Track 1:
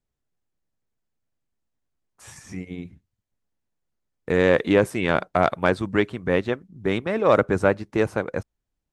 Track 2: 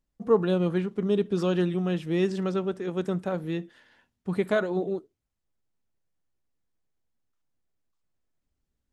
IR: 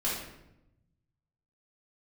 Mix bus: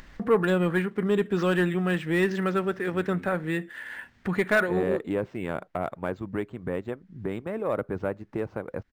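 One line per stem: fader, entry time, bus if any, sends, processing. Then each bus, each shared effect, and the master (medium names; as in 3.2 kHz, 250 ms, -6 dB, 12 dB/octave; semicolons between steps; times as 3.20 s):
-9.5 dB, 0.40 s, no send, treble shelf 2.2 kHz -10 dB
+1.0 dB, 0.00 s, no send, peaking EQ 1.8 kHz +14 dB 1.1 oct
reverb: none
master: upward compressor, threshold -25 dBFS; saturation -13 dBFS, distortion -18 dB; decimation joined by straight lines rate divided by 4×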